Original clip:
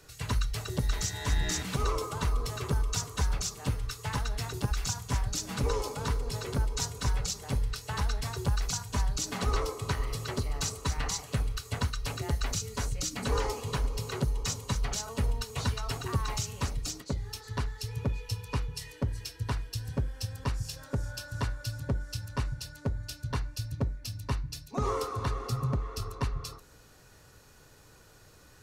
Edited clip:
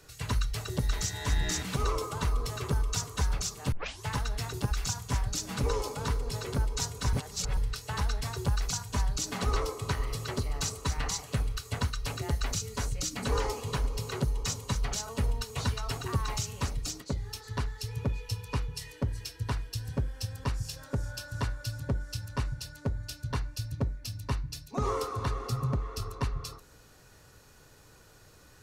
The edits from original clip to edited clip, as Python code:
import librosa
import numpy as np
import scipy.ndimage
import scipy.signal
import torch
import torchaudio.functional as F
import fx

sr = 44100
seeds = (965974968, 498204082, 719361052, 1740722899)

y = fx.edit(x, sr, fx.tape_start(start_s=3.72, length_s=0.32),
    fx.reverse_span(start_s=7.13, length_s=0.44), tone=tone)